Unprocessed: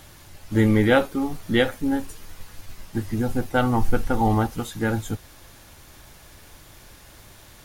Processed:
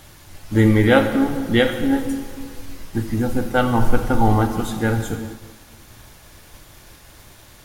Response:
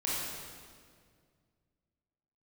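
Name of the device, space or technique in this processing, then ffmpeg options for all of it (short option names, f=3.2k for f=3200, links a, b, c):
keyed gated reverb: -filter_complex "[0:a]asplit=3[a][b][c];[1:a]atrim=start_sample=2205[d];[b][d]afir=irnorm=-1:irlink=0[e];[c]apad=whole_len=336970[f];[e][f]sidechaingate=range=-33dB:threshold=-45dB:ratio=16:detection=peak,volume=-10.5dB[g];[a][g]amix=inputs=2:normalize=0,volume=1dB"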